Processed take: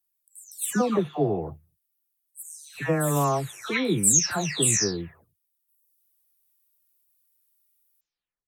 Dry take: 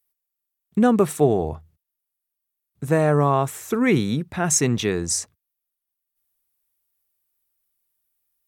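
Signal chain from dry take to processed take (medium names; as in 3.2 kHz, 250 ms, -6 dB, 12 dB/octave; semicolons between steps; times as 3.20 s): delay that grows with frequency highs early, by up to 471 ms; treble shelf 2.3 kHz +9.5 dB; trim -4.5 dB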